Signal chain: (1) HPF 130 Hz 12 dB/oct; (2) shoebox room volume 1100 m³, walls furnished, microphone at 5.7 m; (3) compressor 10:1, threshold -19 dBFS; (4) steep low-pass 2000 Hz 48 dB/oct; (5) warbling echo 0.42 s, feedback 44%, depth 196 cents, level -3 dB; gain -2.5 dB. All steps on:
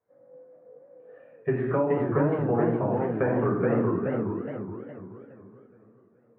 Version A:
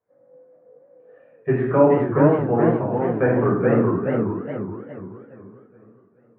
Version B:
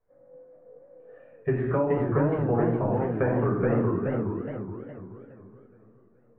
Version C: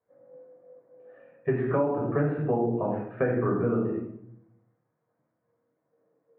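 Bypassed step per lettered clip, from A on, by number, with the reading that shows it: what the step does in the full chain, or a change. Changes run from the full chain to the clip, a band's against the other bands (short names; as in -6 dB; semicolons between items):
3, mean gain reduction 4.0 dB; 1, 125 Hz band +3.0 dB; 5, momentary loudness spread change -8 LU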